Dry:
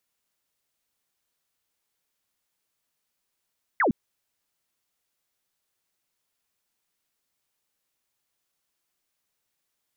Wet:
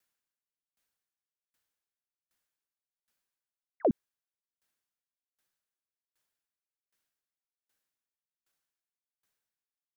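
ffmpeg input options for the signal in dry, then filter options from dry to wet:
-f lavfi -i "aevalsrc='0.119*clip(t/0.002,0,1)*clip((0.11-t)/0.002,0,1)*sin(2*PI*2200*0.11/log(180/2200)*(exp(log(180/2200)*t/0.11)-1))':d=0.11:s=44100"
-af "equalizer=f=1600:t=o:w=0.32:g=6,aeval=exprs='val(0)*pow(10,-37*if(lt(mod(1.3*n/s,1),2*abs(1.3)/1000),1-mod(1.3*n/s,1)/(2*abs(1.3)/1000),(mod(1.3*n/s,1)-2*abs(1.3)/1000)/(1-2*abs(1.3)/1000))/20)':c=same"

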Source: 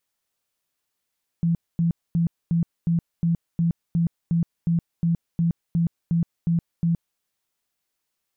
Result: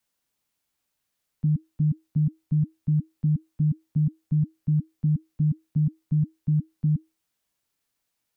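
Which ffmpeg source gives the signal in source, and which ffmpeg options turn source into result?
-f lavfi -i "aevalsrc='0.133*sin(2*PI*168*mod(t,0.36))*lt(mod(t,0.36),20/168)':d=5.76:s=44100"
-filter_complex "[0:a]acrossover=split=120|210|360[s0][s1][s2][s3];[s3]alimiter=level_in=15.8:limit=0.0631:level=0:latency=1:release=119,volume=0.0631[s4];[s0][s1][s2][s4]amix=inputs=4:normalize=0,afreqshift=-320"

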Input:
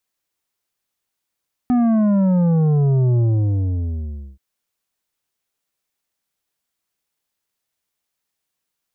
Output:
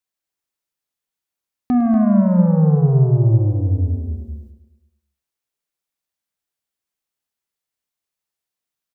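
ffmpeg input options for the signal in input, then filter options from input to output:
-f lavfi -i "aevalsrc='0.2*clip((2.68-t)/1.19,0,1)*tanh(2.66*sin(2*PI*250*2.68/log(65/250)*(exp(log(65/250)*t/2.68)-1)))/tanh(2.66)':d=2.68:s=44100"
-filter_complex "[0:a]asplit=2[s0][s1];[s1]aecho=0:1:45|158|241:0.251|0.211|0.562[s2];[s0][s2]amix=inputs=2:normalize=0,agate=range=0.398:threshold=0.0112:ratio=16:detection=peak,asplit=2[s3][s4];[s4]aecho=0:1:105|210|315|420|525|630:0.237|0.133|0.0744|0.0416|0.0233|0.0131[s5];[s3][s5]amix=inputs=2:normalize=0"

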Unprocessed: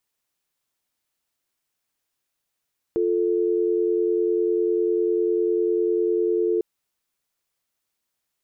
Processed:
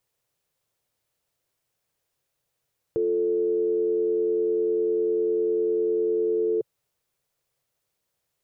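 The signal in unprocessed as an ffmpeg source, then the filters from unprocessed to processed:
-f lavfi -i "aevalsrc='0.0841*(sin(2*PI*350*t)+sin(2*PI*440*t))':d=3.65:s=44100"
-af "equalizer=f=125:t=o:w=1:g=9,equalizer=f=250:t=o:w=1:g=-5,equalizer=f=500:t=o:w=1:g=9,alimiter=limit=0.106:level=0:latency=1:release=11,lowshelf=f=190:g=4"

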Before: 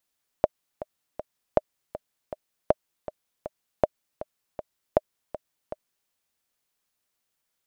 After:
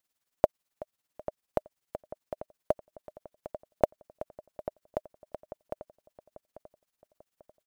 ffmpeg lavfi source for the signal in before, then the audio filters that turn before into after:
-f lavfi -i "aevalsrc='pow(10,(-4.5-15*gte(mod(t,3*60/159),60/159))/20)*sin(2*PI*613*mod(t,60/159))*exp(-6.91*mod(t,60/159)/0.03)':d=5.66:s=44100"
-filter_complex "[0:a]acrusher=bits=8:mode=log:mix=0:aa=0.000001,tremolo=f=18:d=0.71,asplit=2[s0][s1];[s1]adelay=842,lowpass=f=2000:p=1,volume=0.224,asplit=2[s2][s3];[s3]adelay=842,lowpass=f=2000:p=1,volume=0.45,asplit=2[s4][s5];[s5]adelay=842,lowpass=f=2000:p=1,volume=0.45,asplit=2[s6][s7];[s7]adelay=842,lowpass=f=2000:p=1,volume=0.45[s8];[s0][s2][s4][s6][s8]amix=inputs=5:normalize=0"

